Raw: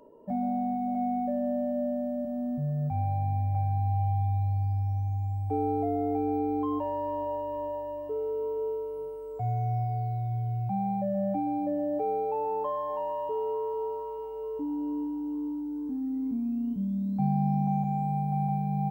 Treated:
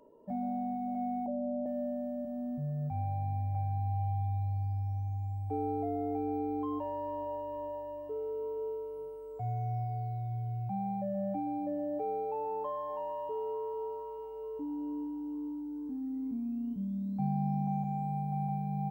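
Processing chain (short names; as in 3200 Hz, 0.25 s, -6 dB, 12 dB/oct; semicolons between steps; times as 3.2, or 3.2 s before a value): 1.26–1.66 inverse Chebyshev low-pass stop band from 2900 Hz, stop band 60 dB; gain -5.5 dB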